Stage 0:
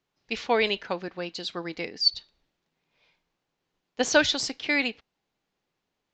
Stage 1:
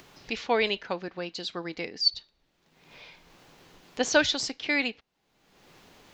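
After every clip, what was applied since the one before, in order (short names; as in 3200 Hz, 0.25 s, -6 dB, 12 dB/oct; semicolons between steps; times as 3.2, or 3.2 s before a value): upward compressor, threshold -31 dBFS; gain -1.5 dB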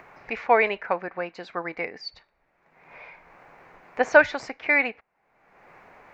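EQ curve 310 Hz 0 dB, 680 Hz +11 dB, 2300 Hz +9 dB, 3200 Hz -12 dB; gain -2 dB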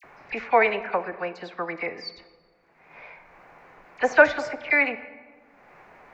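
dispersion lows, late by 40 ms, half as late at 2100 Hz; on a send at -12 dB: reverb RT60 1.7 s, pre-delay 3 ms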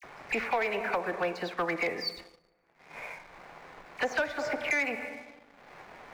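compressor 8:1, threshold -27 dBFS, peak gain reduction 18 dB; sample leveller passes 2; gain -4 dB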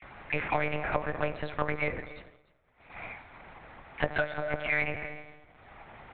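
monotone LPC vocoder at 8 kHz 150 Hz; echo 0.296 s -20 dB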